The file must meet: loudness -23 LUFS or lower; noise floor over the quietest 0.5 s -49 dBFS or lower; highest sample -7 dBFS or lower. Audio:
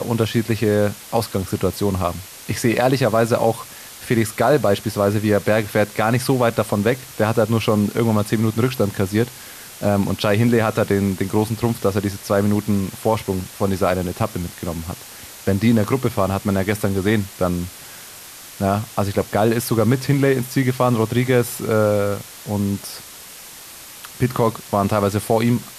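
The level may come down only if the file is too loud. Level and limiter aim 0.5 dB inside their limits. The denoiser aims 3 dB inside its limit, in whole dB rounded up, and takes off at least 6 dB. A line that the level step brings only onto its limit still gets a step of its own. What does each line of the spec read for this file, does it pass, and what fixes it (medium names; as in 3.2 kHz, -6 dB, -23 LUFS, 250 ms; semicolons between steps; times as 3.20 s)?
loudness -20.0 LUFS: fail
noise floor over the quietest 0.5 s -39 dBFS: fail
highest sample -4.0 dBFS: fail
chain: noise reduction 10 dB, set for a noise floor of -39 dBFS; trim -3.5 dB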